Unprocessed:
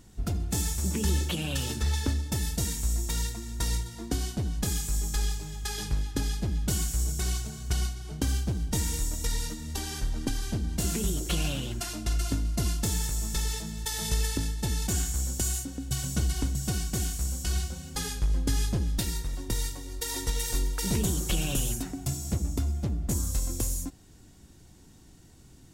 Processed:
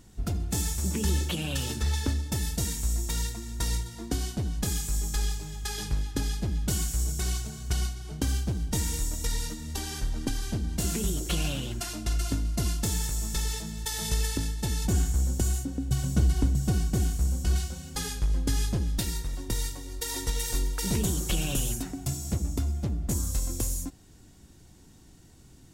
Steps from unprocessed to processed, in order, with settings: 14.85–17.56 s: tilt shelf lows +5 dB, about 1.1 kHz

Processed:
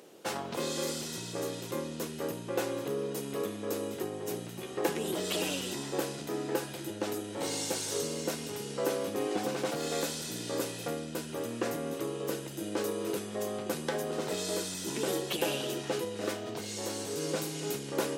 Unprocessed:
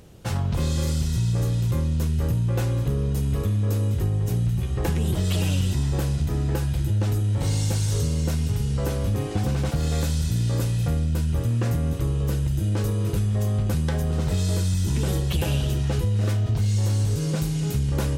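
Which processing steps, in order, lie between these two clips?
ladder high-pass 260 Hz, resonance 25%; trim +4.5 dB

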